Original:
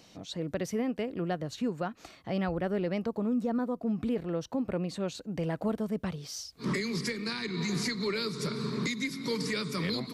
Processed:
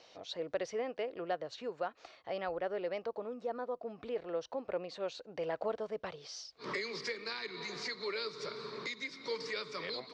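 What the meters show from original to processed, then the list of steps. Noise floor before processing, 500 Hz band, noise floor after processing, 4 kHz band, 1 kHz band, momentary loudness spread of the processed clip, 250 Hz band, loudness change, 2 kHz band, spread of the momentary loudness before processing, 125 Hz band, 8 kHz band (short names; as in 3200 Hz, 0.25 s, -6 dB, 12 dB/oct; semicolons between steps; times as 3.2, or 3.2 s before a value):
-57 dBFS, -3.0 dB, -63 dBFS, -5.0 dB, -2.0 dB, 5 LU, -17.0 dB, -6.5 dB, -4.0 dB, 5 LU, -20.5 dB, -10.5 dB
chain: LPF 5500 Hz 24 dB/oct; resonant low shelf 330 Hz -14 dB, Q 1.5; vocal rider within 5 dB 2 s; gain -4.5 dB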